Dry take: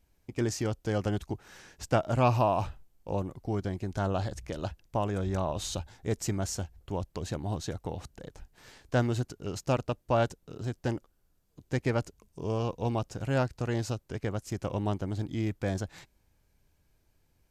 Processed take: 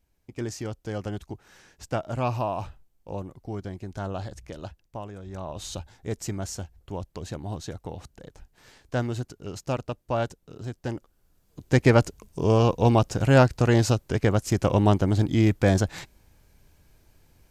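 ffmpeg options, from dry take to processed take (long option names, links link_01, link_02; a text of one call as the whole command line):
ffmpeg -i in.wav -af "volume=19dB,afade=type=out:start_time=4.51:duration=0.71:silence=0.398107,afade=type=in:start_time=5.22:duration=0.52:silence=0.316228,afade=type=in:start_time=10.9:duration=0.95:silence=0.266073" out.wav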